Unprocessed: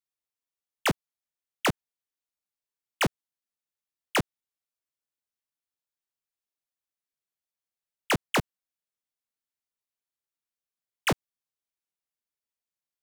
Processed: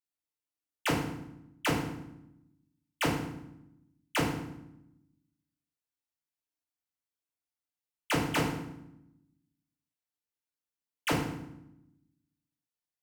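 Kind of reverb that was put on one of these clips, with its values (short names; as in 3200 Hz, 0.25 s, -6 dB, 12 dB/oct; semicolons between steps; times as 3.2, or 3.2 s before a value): FDN reverb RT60 0.82 s, low-frequency decay 1.6×, high-frequency decay 0.8×, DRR -3.5 dB; gain -8 dB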